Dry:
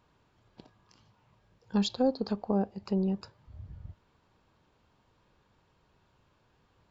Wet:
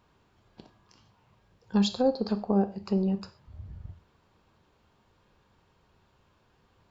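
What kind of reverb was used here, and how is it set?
gated-style reverb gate 160 ms falling, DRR 9.5 dB; trim +2 dB

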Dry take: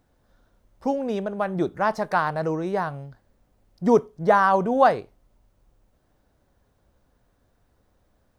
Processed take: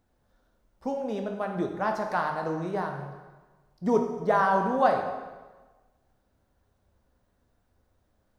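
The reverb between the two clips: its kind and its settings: plate-style reverb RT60 1.3 s, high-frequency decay 0.85×, DRR 3 dB; trim -6.5 dB

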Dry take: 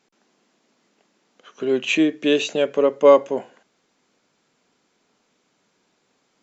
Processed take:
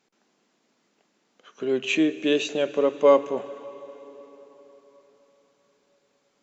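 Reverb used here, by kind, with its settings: plate-style reverb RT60 4.3 s, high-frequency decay 0.85×, DRR 14 dB; trim -4 dB

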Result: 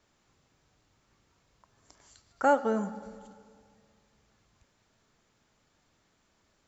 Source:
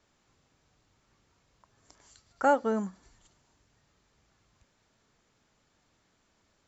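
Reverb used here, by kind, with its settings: algorithmic reverb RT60 2.1 s, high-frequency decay 0.5×, pre-delay 10 ms, DRR 13 dB

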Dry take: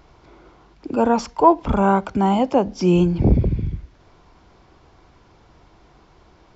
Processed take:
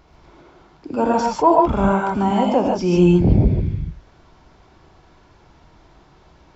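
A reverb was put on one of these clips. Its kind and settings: gated-style reverb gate 170 ms rising, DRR -1 dB; trim -2 dB

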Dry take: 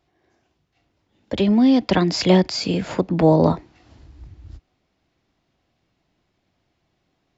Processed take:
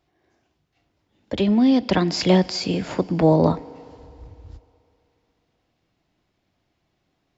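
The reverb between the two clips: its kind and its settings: FDN reverb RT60 2.9 s, low-frequency decay 0.75×, high-frequency decay 0.9×, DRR 18 dB; trim -1.5 dB

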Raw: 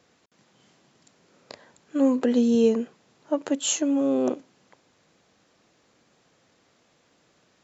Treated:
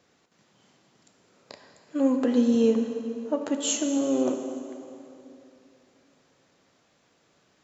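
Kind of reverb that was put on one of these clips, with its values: plate-style reverb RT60 2.9 s, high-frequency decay 0.75×, DRR 4.5 dB; trim -2.5 dB

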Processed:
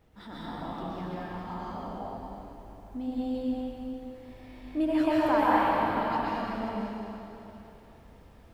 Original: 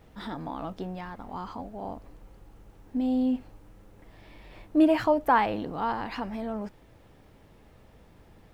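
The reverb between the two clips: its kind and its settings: plate-style reverb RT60 3.1 s, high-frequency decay 0.95×, pre-delay 110 ms, DRR -8 dB; trim -8.5 dB

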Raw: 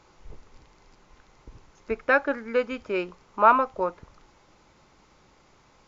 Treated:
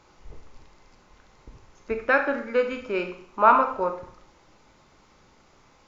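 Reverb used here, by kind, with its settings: Schroeder reverb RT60 0.58 s, combs from 26 ms, DRR 5.5 dB

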